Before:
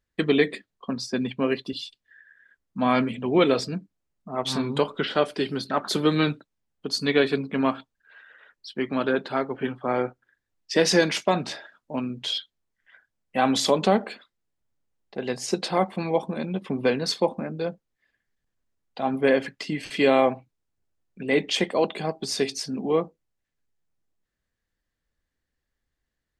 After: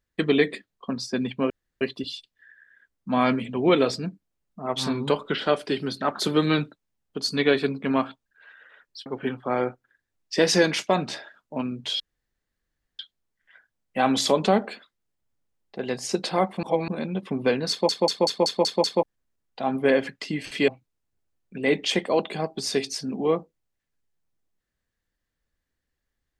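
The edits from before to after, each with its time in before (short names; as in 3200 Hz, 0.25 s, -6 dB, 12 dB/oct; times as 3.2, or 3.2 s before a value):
1.5 insert room tone 0.31 s
8.75–9.44 cut
12.38 insert room tone 0.99 s
16.02–16.27 reverse
17.09 stutter in place 0.19 s, 7 plays
20.07–20.33 cut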